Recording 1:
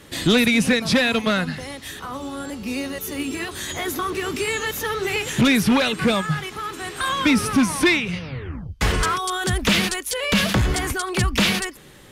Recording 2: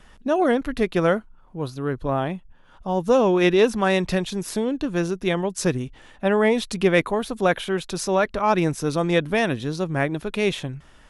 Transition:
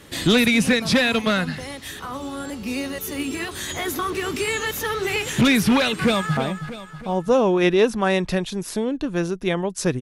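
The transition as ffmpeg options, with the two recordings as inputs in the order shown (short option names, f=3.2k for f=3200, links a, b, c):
-filter_complex "[0:a]apad=whole_dur=10.01,atrim=end=10.01,atrim=end=6.372[a];[1:a]atrim=start=2.168:end=5.81[b];[a][b]acrossfade=d=0.004:c1=hsin:c2=hsin,asplit=2[c][d];[d]afade=t=in:st=6.03:d=0.01,afade=t=out:st=6.37:d=0.01,aecho=0:1:320|640|960|1280|1600|1920:0.334965|0.167483|0.0837414|0.0418707|0.0209353|0.0104677[e];[c][e]amix=inputs=2:normalize=0"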